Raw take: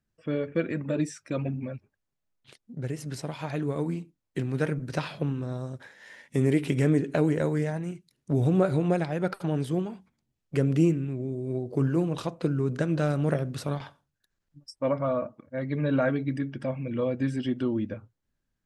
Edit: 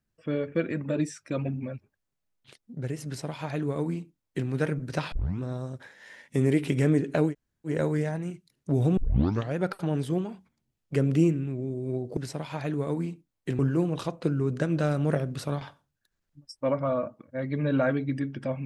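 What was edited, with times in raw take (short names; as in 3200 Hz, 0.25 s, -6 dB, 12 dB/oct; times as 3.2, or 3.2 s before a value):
3.06–4.48 copy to 11.78
5.12 tape start 0.28 s
7.3 insert room tone 0.39 s, crossfade 0.10 s
8.58 tape start 0.59 s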